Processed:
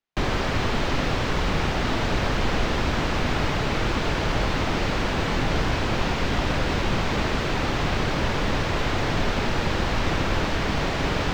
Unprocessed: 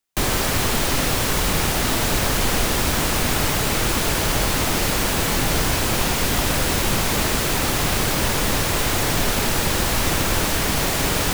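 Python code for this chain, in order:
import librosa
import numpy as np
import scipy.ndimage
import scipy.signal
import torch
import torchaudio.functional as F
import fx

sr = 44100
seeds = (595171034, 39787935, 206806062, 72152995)

y = fx.air_absorb(x, sr, metres=190.0)
y = y * 10.0 ** (-1.5 / 20.0)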